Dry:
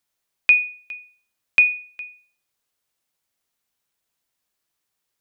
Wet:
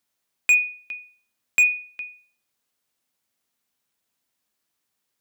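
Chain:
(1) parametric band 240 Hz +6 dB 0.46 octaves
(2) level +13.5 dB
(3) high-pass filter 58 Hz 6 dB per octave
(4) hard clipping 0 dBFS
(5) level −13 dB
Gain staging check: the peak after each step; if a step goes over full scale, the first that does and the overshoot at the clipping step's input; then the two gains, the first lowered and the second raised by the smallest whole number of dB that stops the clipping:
−5.5, +8.0, +8.0, 0.0, −13.0 dBFS
step 2, 8.0 dB
step 2 +5.5 dB, step 5 −5 dB

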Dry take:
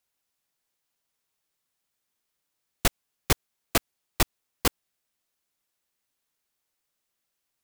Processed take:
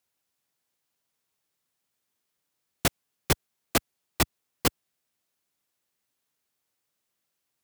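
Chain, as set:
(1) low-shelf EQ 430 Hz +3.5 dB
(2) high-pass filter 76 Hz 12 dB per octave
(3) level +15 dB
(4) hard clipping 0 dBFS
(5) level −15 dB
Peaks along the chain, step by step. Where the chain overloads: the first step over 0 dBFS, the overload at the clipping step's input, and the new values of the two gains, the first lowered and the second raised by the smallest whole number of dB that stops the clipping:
−5.5, −6.0, +9.0, 0.0, −15.0 dBFS
step 3, 9.0 dB
step 3 +6 dB, step 5 −6 dB

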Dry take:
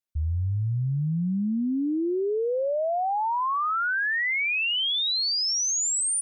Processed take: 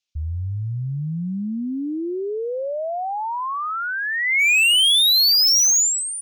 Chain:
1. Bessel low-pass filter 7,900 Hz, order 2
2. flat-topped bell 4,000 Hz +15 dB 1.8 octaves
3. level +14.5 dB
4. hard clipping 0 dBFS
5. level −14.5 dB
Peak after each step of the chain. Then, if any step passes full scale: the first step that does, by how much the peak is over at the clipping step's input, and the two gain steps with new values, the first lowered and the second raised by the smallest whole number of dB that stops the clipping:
−22.5, −8.0, +6.5, 0.0, −14.5 dBFS
step 3, 6.5 dB
step 3 +7.5 dB, step 5 −7.5 dB

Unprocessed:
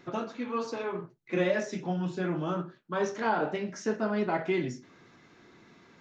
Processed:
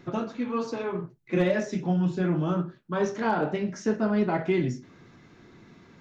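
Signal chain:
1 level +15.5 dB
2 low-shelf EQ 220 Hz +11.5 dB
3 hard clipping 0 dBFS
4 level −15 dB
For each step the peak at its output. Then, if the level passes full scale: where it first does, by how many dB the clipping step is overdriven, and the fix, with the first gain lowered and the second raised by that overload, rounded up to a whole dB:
+0.5, +4.0, 0.0, −15.0 dBFS
step 1, 4.0 dB
step 1 +11.5 dB, step 4 −11 dB

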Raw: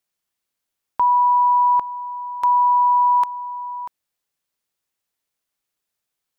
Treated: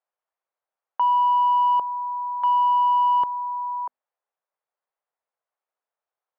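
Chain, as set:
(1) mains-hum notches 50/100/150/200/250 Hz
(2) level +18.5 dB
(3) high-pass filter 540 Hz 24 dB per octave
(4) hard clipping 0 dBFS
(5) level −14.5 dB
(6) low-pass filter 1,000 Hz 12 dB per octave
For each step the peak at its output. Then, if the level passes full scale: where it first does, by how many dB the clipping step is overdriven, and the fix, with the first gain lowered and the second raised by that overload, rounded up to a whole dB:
−12.0, +6.5, +7.0, 0.0, −14.5, −15.0 dBFS
step 2, 7.0 dB
step 2 +11.5 dB, step 5 −7.5 dB

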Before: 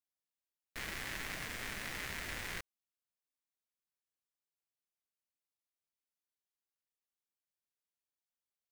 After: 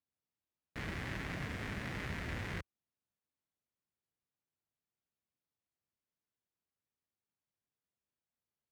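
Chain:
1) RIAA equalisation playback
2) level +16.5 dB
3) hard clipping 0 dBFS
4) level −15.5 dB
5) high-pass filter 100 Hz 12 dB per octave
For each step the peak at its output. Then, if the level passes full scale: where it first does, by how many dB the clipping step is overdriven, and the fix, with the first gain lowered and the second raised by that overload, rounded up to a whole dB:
−21.0, −4.5, −4.5, −20.0, −26.5 dBFS
no step passes full scale

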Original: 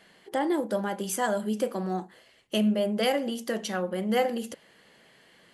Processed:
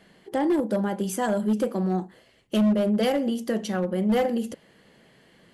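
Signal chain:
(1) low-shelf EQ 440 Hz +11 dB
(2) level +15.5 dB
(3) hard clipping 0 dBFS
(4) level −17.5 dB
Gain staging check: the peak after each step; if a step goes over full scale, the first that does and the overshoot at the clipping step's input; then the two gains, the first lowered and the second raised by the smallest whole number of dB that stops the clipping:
−9.0, +6.5, 0.0, −17.5 dBFS
step 2, 6.5 dB
step 2 +8.5 dB, step 4 −10.5 dB

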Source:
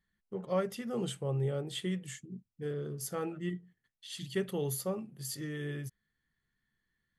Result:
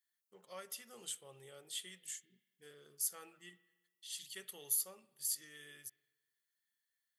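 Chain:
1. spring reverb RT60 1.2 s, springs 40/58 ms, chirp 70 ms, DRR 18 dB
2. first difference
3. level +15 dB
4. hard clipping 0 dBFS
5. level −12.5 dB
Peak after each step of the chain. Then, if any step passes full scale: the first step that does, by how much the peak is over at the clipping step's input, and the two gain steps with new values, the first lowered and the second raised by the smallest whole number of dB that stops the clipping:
−20.0, −20.5, −5.5, −5.5, −18.0 dBFS
no step passes full scale

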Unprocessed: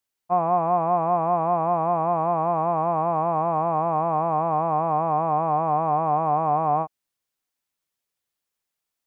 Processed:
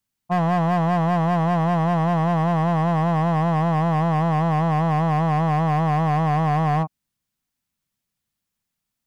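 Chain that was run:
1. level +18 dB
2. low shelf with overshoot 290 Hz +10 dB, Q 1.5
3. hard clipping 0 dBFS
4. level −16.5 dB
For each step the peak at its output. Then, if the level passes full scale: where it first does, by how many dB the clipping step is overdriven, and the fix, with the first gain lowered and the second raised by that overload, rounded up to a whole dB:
+6.5, +7.0, 0.0, −16.5 dBFS
step 1, 7.0 dB
step 1 +11 dB, step 4 −9.5 dB

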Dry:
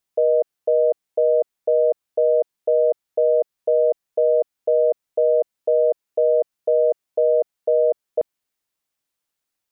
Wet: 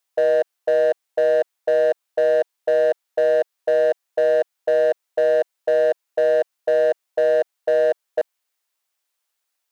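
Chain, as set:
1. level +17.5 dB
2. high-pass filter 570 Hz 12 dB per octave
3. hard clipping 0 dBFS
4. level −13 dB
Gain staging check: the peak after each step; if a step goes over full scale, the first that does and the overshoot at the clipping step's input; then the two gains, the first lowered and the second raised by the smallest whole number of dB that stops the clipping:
+7.0, +3.5, 0.0, −13.0 dBFS
step 1, 3.5 dB
step 1 +13.5 dB, step 4 −9 dB

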